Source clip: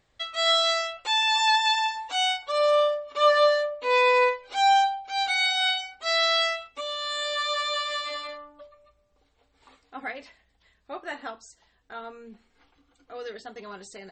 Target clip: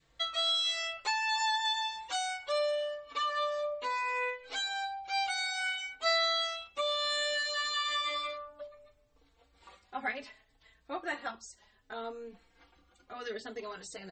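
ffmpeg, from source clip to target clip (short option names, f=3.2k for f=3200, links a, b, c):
-filter_complex "[0:a]acompressor=threshold=-27dB:ratio=6,adynamicequalizer=threshold=0.00708:dfrequency=740:dqfactor=1.1:tfrequency=740:tqfactor=1.1:attack=5:release=100:ratio=0.375:range=2.5:mode=cutabove:tftype=bell,asplit=2[a][b];[b]adelay=4,afreqshift=0.65[c];[a][c]amix=inputs=2:normalize=1,volume=3dB"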